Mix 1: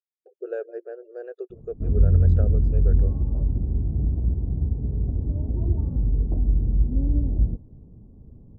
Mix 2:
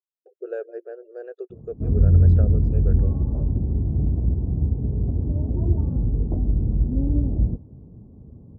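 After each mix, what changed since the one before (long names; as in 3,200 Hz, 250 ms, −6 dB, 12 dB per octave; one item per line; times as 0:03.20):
background +4.5 dB
master: add high-pass filter 64 Hz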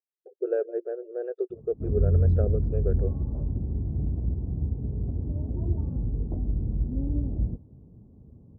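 speech: add spectral tilt −4 dB per octave
background −6.5 dB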